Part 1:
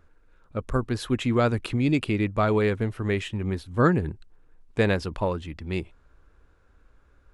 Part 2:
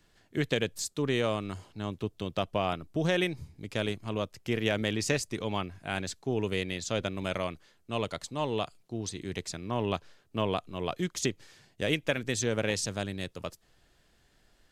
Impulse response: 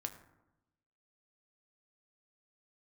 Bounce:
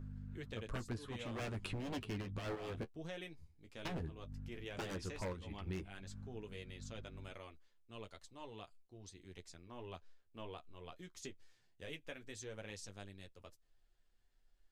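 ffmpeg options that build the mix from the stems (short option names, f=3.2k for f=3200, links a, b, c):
-filter_complex "[0:a]aeval=exprs='val(0)+0.0126*(sin(2*PI*50*n/s)+sin(2*PI*2*50*n/s)/2+sin(2*PI*3*50*n/s)/3+sin(2*PI*4*50*n/s)/4+sin(2*PI*5*50*n/s)/5)':c=same,aeval=exprs='0.0891*(abs(mod(val(0)/0.0891+3,4)-2)-1)':c=same,volume=-2.5dB,asplit=3[a][b][c];[a]atrim=end=2.84,asetpts=PTS-STARTPTS,afade=t=out:st=2.836:d=0.004:c=hsin[d];[b]atrim=start=2.84:end=3.85,asetpts=PTS-STARTPTS,volume=0[e];[c]atrim=start=3.85,asetpts=PTS-STARTPTS,afade=t=in:d=0.004:c=hsin[f];[d][e][f]concat=n=3:v=0:a=1[g];[1:a]asubboost=boost=6:cutoff=53,bandreject=f=620:w=19,volume=-15dB,asplit=2[h][i];[i]apad=whole_len=323256[j];[g][j]sidechaincompress=threshold=-49dB:ratio=8:attack=6.4:release=120[k];[k][h]amix=inputs=2:normalize=0,flanger=delay=8.1:depth=5:regen=-27:speed=0.14:shape=triangular,acompressor=threshold=-39dB:ratio=6"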